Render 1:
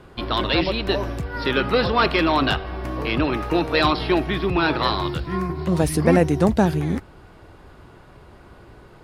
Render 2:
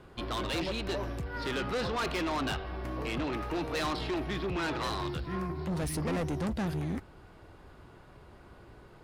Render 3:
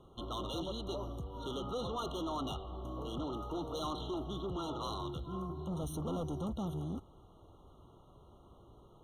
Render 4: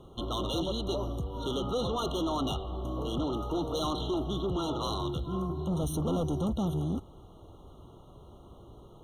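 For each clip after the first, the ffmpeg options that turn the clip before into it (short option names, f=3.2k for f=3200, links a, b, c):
-af "asoftclip=type=tanh:threshold=-21.5dB,volume=-7dB"
-af "afftfilt=real='re*eq(mod(floor(b*sr/1024/1400),2),0)':imag='im*eq(mod(floor(b*sr/1024/1400),2),0)':win_size=1024:overlap=0.75,volume=-5.5dB"
-af "equalizer=f=1.2k:t=o:w=1.2:g=-3.5,volume=8dB"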